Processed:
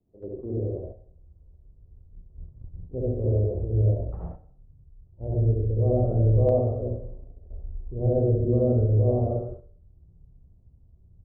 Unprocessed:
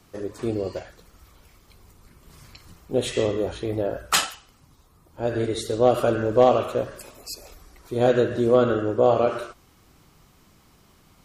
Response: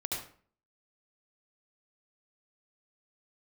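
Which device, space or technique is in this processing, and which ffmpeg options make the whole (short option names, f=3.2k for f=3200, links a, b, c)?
next room: -filter_complex "[0:a]lowpass=f=550:w=0.5412,lowpass=f=550:w=1.3066[a];[1:a]atrim=start_sample=2205[b];[a][b]afir=irnorm=-1:irlink=0,aecho=1:1:65|130|195:0.398|0.115|0.0335,asubboost=boost=8.5:cutoff=99,agate=range=-7dB:threshold=-31dB:ratio=16:detection=peak,volume=-6.5dB"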